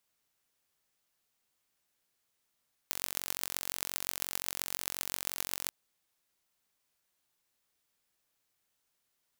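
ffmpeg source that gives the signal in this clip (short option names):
-f lavfi -i "aevalsrc='0.631*eq(mod(n,965),0)*(0.5+0.5*eq(mod(n,5790),0))':d=2.78:s=44100"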